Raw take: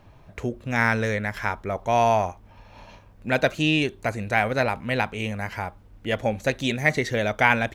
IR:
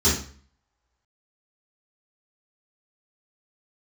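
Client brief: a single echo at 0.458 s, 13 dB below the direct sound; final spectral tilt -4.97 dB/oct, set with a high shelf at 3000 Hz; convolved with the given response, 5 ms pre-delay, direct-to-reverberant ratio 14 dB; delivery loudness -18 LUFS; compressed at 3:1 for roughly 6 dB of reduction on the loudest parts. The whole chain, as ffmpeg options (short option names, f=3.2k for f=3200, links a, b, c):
-filter_complex "[0:a]highshelf=f=3k:g=-6.5,acompressor=threshold=-23dB:ratio=3,aecho=1:1:458:0.224,asplit=2[a][b];[1:a]atrim=start_sample=2205,adelay=5[c];[b][c]afir=irnorm=-1:irlink=0,volume=-30dB[d];[a][d]amix=inputs=2:normalize=0,volume=10dB"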